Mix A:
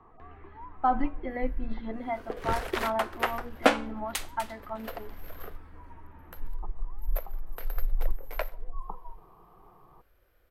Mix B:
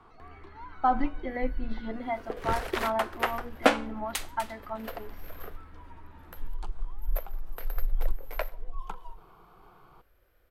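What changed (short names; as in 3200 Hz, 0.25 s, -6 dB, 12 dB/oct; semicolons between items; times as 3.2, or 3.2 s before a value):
speech: remove air absorption 160 m; first sound: remove brick-wall FIR low-pass 1300 Hz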